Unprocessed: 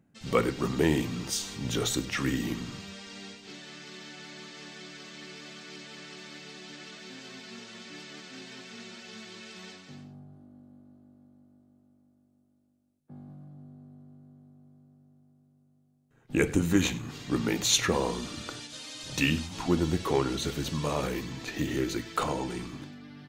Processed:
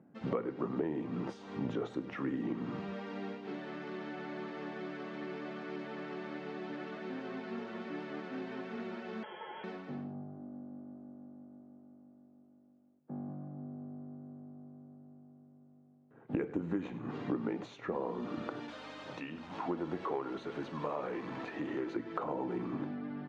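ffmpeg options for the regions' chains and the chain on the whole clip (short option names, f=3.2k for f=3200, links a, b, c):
-filter_complex "[0:a]asettb=1/sr,asplit=3[a][b][c];[a]atrim=end=9.234[d];[b]atrim=start=9.23:end=9.64,asetpts=PTS-STARTPTS,afade=t=in:d=0.004:c=qsin,afade=t=out:st=0.406:d=0.004:c=qsin,lowpass=f=3k:t=q:w=0.5098,lowpass=f=3k:t=q:w=0.6013,lowpass=f=3k:t=q:w=0.9,lowpass=f=3k:t=q:w=2.563,afreqshift=-3500,asuperstop=centerf=1200:order=8:qfactor=5.9[e];[c]atrim=start=9.636[f];[d][e]acrossfade=d=0.004:c1=hsin:c2=qsin[g];[g][f]acrossfade=d=0.004:c1=qsin:c2=hsin,asettb=1/sr,asplit=3[h][i][j];[h]atrim=end=18.684[k];[i]atrim=start=18.68:end=21.96,asetpts=PTS-STARTPTS,afade=t=in:d=0.004:c=qsin,afade=t=out:st=3.276:d=0.004:c=qsin,aeval=exprs='val(0)+0.5*0.0133*sgn(val(0))':c=same,lowshelf=f=460:g=-11.5,aeval=exprs='val(0)+0.00251*(sin(2*PI*50*n/s)+sin(2*PI*2*50*n/s)/2+sin(2*PI*3*50*n/s)/3+sin(2*PI*4*50*n/s)/4+sin(2*PI*5*50*n/s)/5)':c=same[l];[j]atrim=start=21.956[m];[k][l]acrossfade=d=0.004:c1=hsin:c2=qsin[n];[n][m]acrossfade=d=0.004:c1=qsin:c2=hsin,highpass=220,acompressor=threshold=-40dB:ratio=10,lowpass=1.1k,volume=9dB"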